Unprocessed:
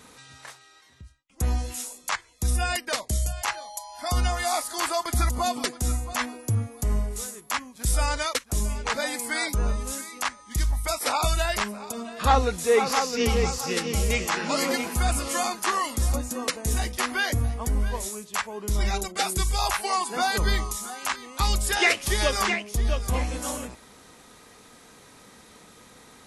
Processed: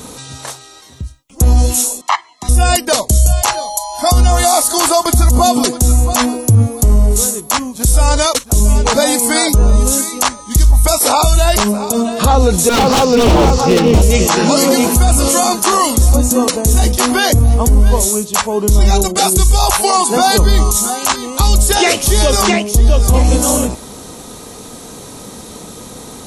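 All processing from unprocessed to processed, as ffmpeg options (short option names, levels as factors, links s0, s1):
-filter_complex "[0:a]asettb=1/sr,asplit=3[s0][s1][s2];[s0]atrim=end=2.014[s3];[s1]atrim=start=2.01:end=2.49,asetpts=PTS-STARTPTS,afade=t=in:d=0.004:c=qsin,afade=t=out:st=0.476:d=0.004:c=qsin,highpass=670,lowpass=2600,aecho=1:1:1:0.9,atrim=end_sample=21168[s4];[s2]atrim=start=2.486[s5];[s3][s4]acrossfade=d=0.004:c1=hsin:c2=qsin[s6];[s6][s5]acrossfade=d=0.004:c1=qsin:c2=hsin,asettb=1/sr,asplit=3[s7][s8][s9];[s7]atrim=end=12.694[s10];[s8]atrim=start=12.69:end=14.02,asetpts=PTS-STARTPTS,afade=t=in:d=0.004:c=qsin,afade=t=out:st=1.326:d=0.004:c=qsin,lowpass=3000,acompressor=mode=upward:threshold=0.0631:ratio=2.5:attack=3.2:release=140:knee=2.83:detection=peak,aeval=exprs='0.0708*(abs(mod(val(0)/0.0708+3,4)-2)-1)':c=same[s11];[s9]atrim=start=14.016[s12];[s10][s11]acrossfade=d=0.004:c1=hsin:c2=qsin[s13];[s13][s12]acrossfade=d=0.004:c1=qsin:c2=hsin,equalizer=f=1900:w=0.91:g=-13,bandreject=f=4900:w=19,alimiter=level_in=13.3:limit=0.891:release=50:level=0:latency=1,volume=0.891"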